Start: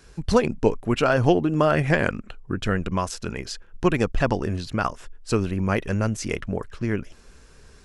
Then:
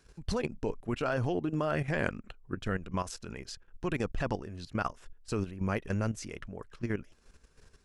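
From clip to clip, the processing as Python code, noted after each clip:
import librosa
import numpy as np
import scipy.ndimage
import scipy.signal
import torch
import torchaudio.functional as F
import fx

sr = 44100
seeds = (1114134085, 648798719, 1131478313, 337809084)

y = fx.level_steps(x, sr, step_db=12)
y = y * 10.0 ** (-6.0 / 20.0)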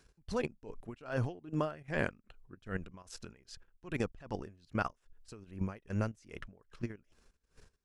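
y = x * 10.0 ** (-22 * (0.5 - 0.5 * np.cos(2.0 * np.pi * 2.5 * np.arange(len(x)) / sr)) / 20.0)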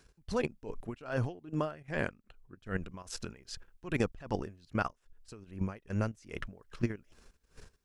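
y = fx.rider(x, sr, range_db=4, speed_s=0.5)
y = y * 10.0 ** (3.0 / 20.0)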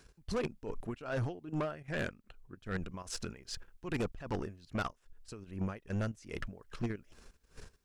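y = 10.0 ** (-31.5 / 20.0) * np.tanh(x / 10.0 ** (-31.5 / 20.0))
y = y * 10.0 ** (2.5 / 20.0)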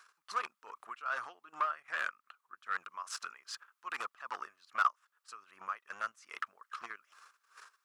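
y = fx.highpass_res(x, sr, hz=1200.0, q=5.8)
y = y * 10.0 ** (-1.5 / 20.0)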